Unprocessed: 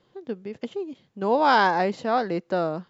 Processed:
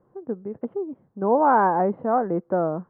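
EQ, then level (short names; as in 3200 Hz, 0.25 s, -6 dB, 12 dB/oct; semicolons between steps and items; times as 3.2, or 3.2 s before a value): LPF 1300 Hz 24 dB/oct; air absorption 310 m; +3.0 dB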